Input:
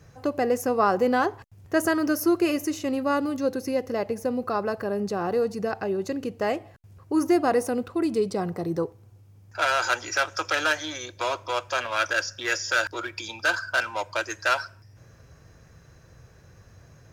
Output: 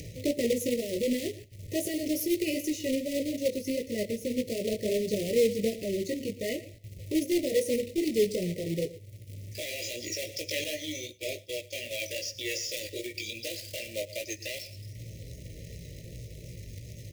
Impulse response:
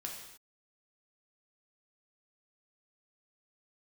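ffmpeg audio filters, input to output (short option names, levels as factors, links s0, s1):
-filter_complex "[0:a]alimiter=limit=0.141:level=0:latency=1:release=34,flanger=delay=16.5:depth=2.9:speed=2.6,aecho=1:1:114:0.158,aphaser=in_gain=1:out_gain=1:delay=2.1:decay=0.25:speed=0.19:type=sinusoidal,acrusher=bits=2:mode=log:mix=0:aa=0.000001,asuperstop=centerf=1100:order=20:qfactor=0.85,asettb=1/sr,asplit=3[s0][s1][s2];[s0]atrim=end=10.644[s3];[s1]atrim=start=10.64:end=11.91,asetpts=PTS-STARTPTS,afade=t=in:d=0.004:c=qsin,afade=t=out:st=1.266:d=0.004:c=qsin,agate=range=0.0224:threshold=0.0178:ratio=3:detection=peak[s4];[s2]atrim=start=11.906[s5];[s3][s4]acrossfade=d=0.004:c1=hsin:c2=qsin[s6];[s6][s5]acrossfade=d=0.004:c1=qsin:c2=hsin,acompressor=mode=upward:threshold=0.0224:ratio=2.5"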